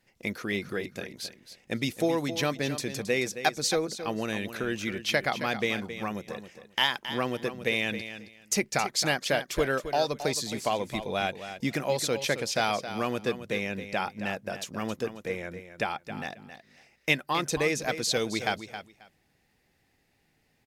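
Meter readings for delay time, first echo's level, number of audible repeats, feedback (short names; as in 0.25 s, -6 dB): 0.269 s, -11.0 dB, 2, 18%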